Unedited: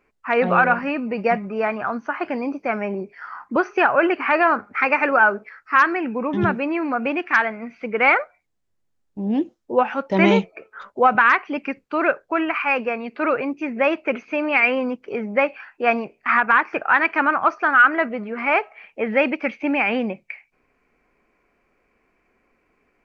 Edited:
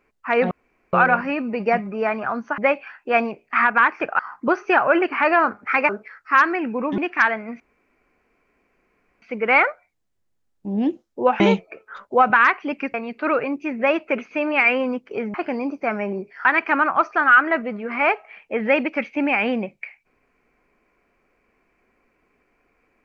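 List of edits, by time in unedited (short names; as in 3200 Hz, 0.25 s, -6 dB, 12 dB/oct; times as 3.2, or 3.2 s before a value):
0.51 insert room tone 0.42 s
2.16–3.27 swap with 15.31–16.92
4.97–5.3 cut
6.39–7.12 cut
7.74 insert room tone 1.62 s
9.92–10.25 cut
11.79–12.91 cut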